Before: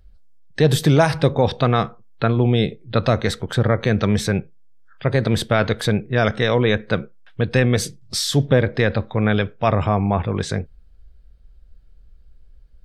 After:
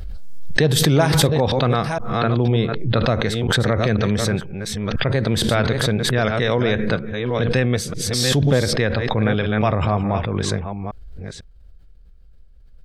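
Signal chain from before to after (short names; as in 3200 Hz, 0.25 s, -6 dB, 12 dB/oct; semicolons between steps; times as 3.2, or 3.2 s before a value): reverse delay 0.496 s, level -7.5 dB; 2.34–3.27 high shelf 6400 Hz -7.5 dB; backwards sustainer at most 26 dB/s; gain -2.5 dB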